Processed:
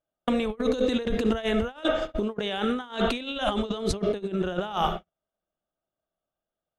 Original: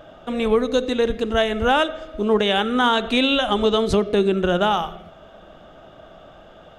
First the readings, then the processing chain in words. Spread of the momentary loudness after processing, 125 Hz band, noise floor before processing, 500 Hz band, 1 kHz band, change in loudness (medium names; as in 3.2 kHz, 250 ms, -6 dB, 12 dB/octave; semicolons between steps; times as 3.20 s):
3 LU, -5.0 dB, -46 dBFS, -7.5 dB, -9.0 dB, -7.5 dB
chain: compressor with a negative ratio -27 dBFS, ratio -1; gate -28 dBFS, range -51 dB